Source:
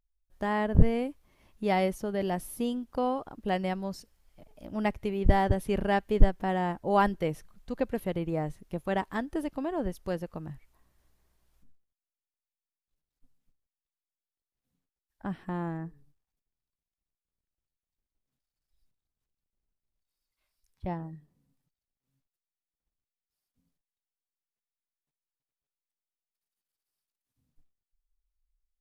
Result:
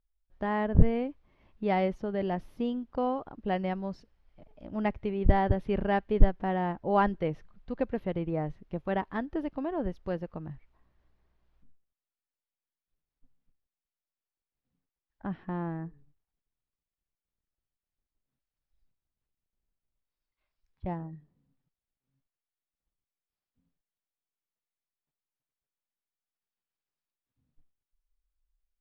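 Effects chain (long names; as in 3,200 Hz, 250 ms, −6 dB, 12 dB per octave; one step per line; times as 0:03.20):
high-frequency loss of the air 250 metres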